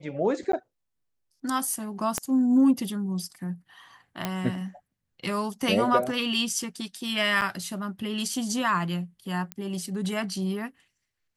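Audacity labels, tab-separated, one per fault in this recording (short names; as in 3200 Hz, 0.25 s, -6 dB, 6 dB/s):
0.520000	0.530000	gap 13 ms
2.180000	2.180000	pop -11 dBFS
4.250000	4.250000	pop -12 dBFS
7.410000	7.420000	gap 8.7 ms
9.520000	9.520000	pop -17 dBFS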